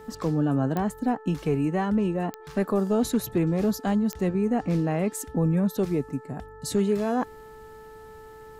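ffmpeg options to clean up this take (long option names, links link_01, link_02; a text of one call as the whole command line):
ffmpeg -i in.wav -af "adeclick=threshold=4,bandreject=frequency=437.1:width_type=h:width=4,bandreject=frequency=874.2:width_type=h:width=4,bandreject=frequency=1311.3:width_type=h:width=4,bandreject=frequency=1748.4:width_type=h:width=4" out.wav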